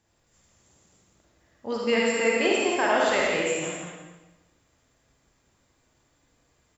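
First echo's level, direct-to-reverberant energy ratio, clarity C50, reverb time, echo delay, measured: -5.0 dB, -4.5 dB, -3.5 dB, 1.1 s, 170 ms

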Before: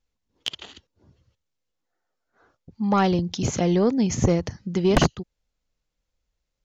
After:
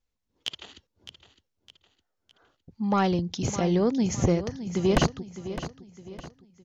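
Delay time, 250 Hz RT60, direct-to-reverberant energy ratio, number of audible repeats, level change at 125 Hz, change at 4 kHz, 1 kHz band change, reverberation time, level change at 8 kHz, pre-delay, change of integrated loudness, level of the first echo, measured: 610 ms, no reverb, no reverb, 3, -3.0 dB, -3.0 dB, -3.0 dB, no reverb, no reading, no reverb, -4.0 dB, -12.5 dB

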